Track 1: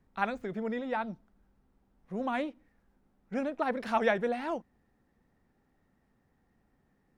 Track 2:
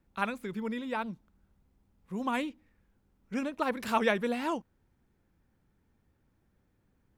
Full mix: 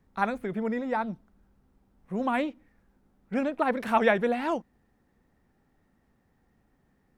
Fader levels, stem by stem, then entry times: +2.5, −6.5 decibels; 0.00, 0.00 seconds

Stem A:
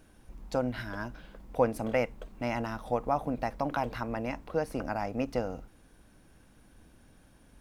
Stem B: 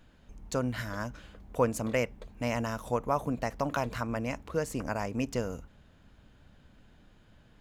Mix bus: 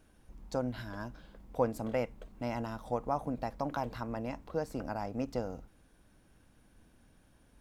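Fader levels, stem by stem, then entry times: −5.5, −15.5 decibels; 0.00, 0.00 seconds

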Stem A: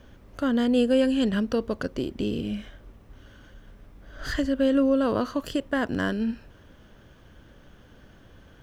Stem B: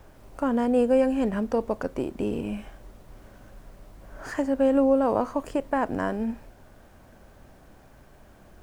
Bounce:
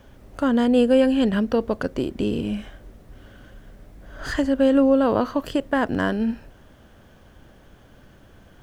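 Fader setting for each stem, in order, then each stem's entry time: 0.0, −3.0 decibels; 0.00, 0.00 seconds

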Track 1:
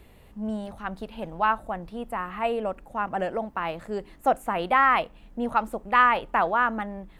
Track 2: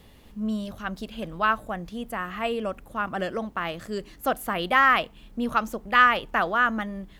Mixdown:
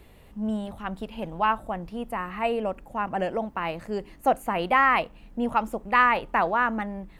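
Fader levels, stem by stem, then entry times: +0.5, −13.0 decibels; 0.00, 0.00 seconds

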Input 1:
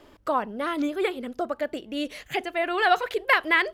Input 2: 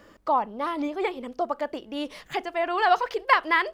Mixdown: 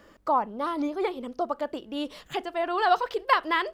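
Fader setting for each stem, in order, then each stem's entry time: −13.0, −2.0 decibels; 0.00, 0.00 seconds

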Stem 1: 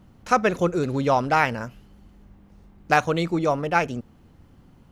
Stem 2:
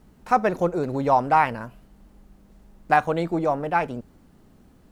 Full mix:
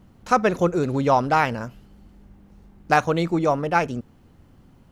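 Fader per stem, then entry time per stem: −0.5, −8.5 decibels; 0.00, 0.00 seconds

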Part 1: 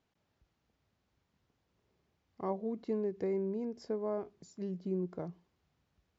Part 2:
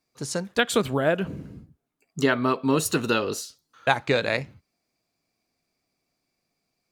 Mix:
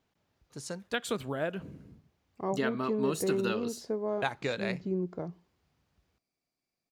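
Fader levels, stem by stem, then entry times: +3.0, −10.5 decibels; 0.00, 0.35 seconds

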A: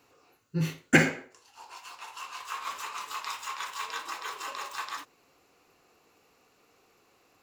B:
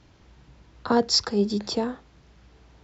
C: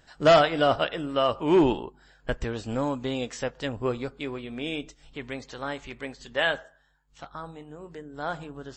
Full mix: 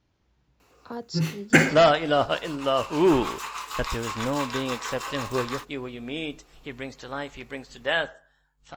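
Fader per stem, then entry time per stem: +3.0, −15.0, 0.0 decibels; 0.60, 0.00, 1.50 seconds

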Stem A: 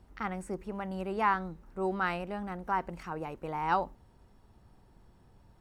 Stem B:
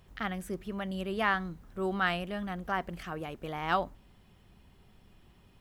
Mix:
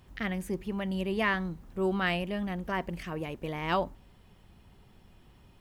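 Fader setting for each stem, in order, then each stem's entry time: −4.0, +1.0 decibels; 0.00, 0.00 seconds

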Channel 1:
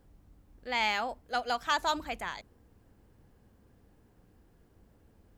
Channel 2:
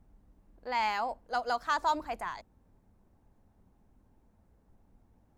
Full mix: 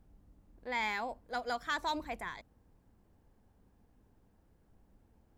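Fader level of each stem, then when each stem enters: −9.5, −3.5 decibels; 0.00, 0.00 seconds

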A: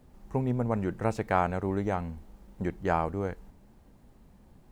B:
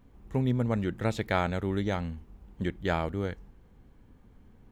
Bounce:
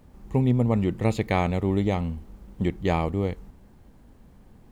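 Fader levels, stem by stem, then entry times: +2.0, +0.5 decibels; 0.00, 0.00 seconds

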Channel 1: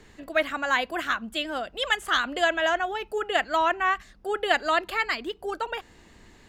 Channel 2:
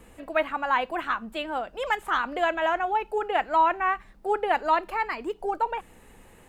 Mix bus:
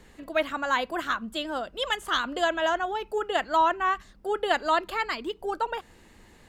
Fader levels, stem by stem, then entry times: −2.5, −7.5 decibels; 0.00, 0.00 seconds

